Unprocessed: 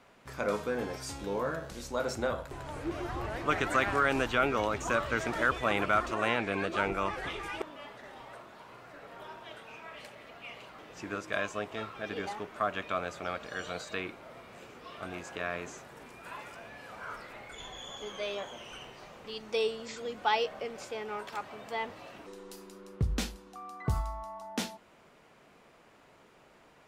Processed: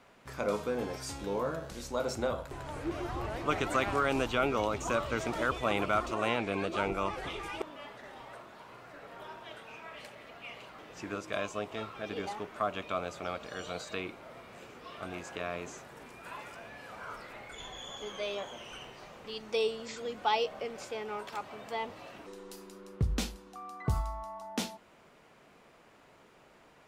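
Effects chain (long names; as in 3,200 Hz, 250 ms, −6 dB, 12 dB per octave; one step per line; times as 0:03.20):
dynamic equaliser 1,700 Hz, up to −8 dB, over −48 dBFS, Q 2.7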